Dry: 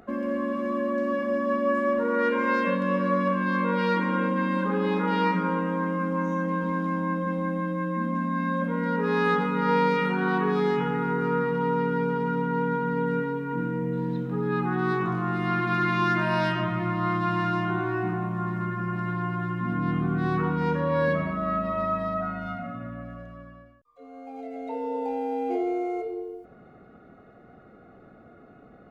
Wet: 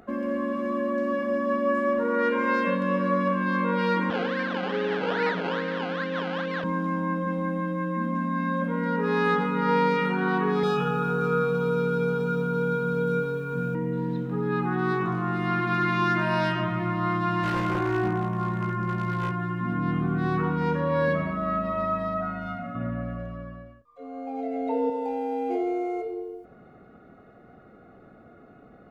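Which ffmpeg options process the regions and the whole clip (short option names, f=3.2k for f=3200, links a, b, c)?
-filter_complex "[0:a]asettb=1/sr,asplit=3[a][b][c];[a]atrim=end=4.104[d];[b]atrim=start=4.1:end=6.64,asetpts=PTS-STARTPTS,afade=t=in:d=0.004:c=qsin,afade=t=out:st=2.536:d=0.004:c=qsin,acrusher=samples=19:mix=1:aa=0.000001:lfo=1:lforange=11.4:lforate=2.4,highpass=f=150:w=0.5412,highpass=f=150:w=1.3066,equalizer=f=190:t=q:w=4:g=-7,equalizer=f=310:t=q:w=4:g=-7,equalizer=f=470:t=q:w=4:g=4,equalizer=f=1k:t=q:w=4:g=-6,equalizer=f=1.6k:t=q:w=4:g=6,equalizer=f=2.4k:t=q:w=4:g=-4,lowpass=f=3.4k:w=0.5412,lowpass=f=3.4k:w=1.3066[e];[c]atrim=start=6.636[f];[d][e]acrossfade=d=0.004:c1=hsin:c2=qsin[g];[g][f]acrossfade=d=0.004:c1=qsin:c2=hsin,asettb=1/sr,asplit=3[h][i][j];[h]atrim=end=10.634[k];[i]atrim=start=10.63:end=13.75,asetpts=PTS-STARTPTS,afade=t=in:d=0.004:c=qsin,afade=t=out:st=3.116:d=0.004:c=qsin,asuperstop=centerf=2000:order=20:qfactor=5.6,highshelf=f=3.2k:g=7.5,aecho=1:1:1.6:0.78,atrim=end_sample=137592[l];[j]atrim=start=13.746[m];[k][l]acrossfade=d=0.004:c1=hsin:c2=qsin[n];[n][m]acrossfade=d=0.004:c1=qsin:c2=hsin,asettb=1/sr,asplit=3[o][p][q];[o]atrim=end=17.434[r];[p]atrim=start=17.43:end=19.32,asetpts=PTS-STARTPTS,afade=t=in:d=0.004:c=qsin,afade=t=out:st=1.886:d=0.004:c=qsin,lowshelf=f=79:g=6,aeval=exprs='0.0891*(abs(mod(val(0)/0.0891+3,4)-2)-1)':c=same,asplit=2[s][t];[t]adelay=19,volume=-5.5dB[u];[s][u]amix=inputs=2:normalize=0,atrim=end_sample=83349[v];[q]atrim=start=19.316[w];[r][v]acrossfade=d=0.004:c1=hsin:c2=qsin[x];[x][w]acrossfade=d=0.004:c1=qsin:c2=hsin,asettb=1/sr,asplit=3[y][z][aa];[y]atrim=end=22.754[ab];[z]atrim=start=22.75:end=24.9,asetpts=PTS-STARTPTS,afade=t=in:d=0.004:c=qsin,afade=t=out:st=2.146:d=0.004:c=qsin,highshelf=f=3.9k:g=-8,acontrast=35,asplit=2[ac][ad];[ad]adelay=34,volume=-11.5dB[ae];[ac][ae]amix=inputs=2:normalize=0,atrim=end_sample=94815[af];[aa]atrim=start=24.896[ag];[ab][af]acrossfade=d=0.004:c1=hsin:c2=qsin[ah];[ah][ag]acrossfade=d=0.004:c1=qsin:c2=hsin"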